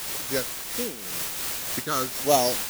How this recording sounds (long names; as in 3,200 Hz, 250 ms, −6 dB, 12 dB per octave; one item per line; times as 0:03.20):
a buzz of ramps at a fixed pitch in blocks of 8 samples
phaser sweep stages 8, 1.4 Hz, lowest notch 670–1,500 Hz
a quantiser's noise floor 6 bits, dither triangular
amplitude modulation by smooth noise